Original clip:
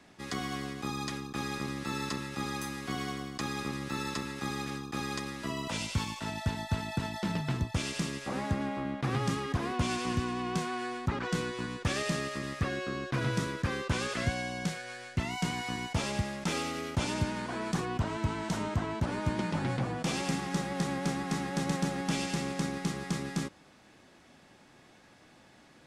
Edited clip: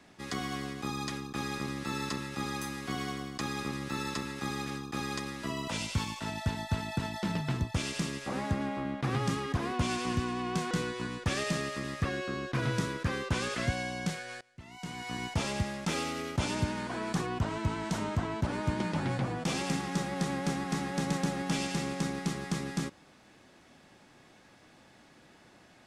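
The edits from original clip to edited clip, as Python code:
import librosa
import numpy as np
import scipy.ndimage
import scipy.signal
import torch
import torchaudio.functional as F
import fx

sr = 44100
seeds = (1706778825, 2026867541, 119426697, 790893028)

y = fx.edit(x, sr, fx.cut(start_s=10.71, length_s=0.59),
    fx.fade_in_from(start_s=15.0, length_s=0.81, curve='qua', floor_db=-22.5), tone=tone)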